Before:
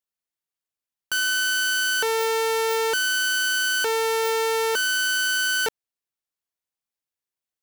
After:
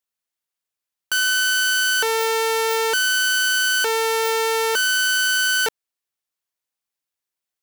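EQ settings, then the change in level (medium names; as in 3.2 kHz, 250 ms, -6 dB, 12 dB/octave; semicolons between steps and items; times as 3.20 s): bass shelf 470 Hz -5 dB; +4.0 dB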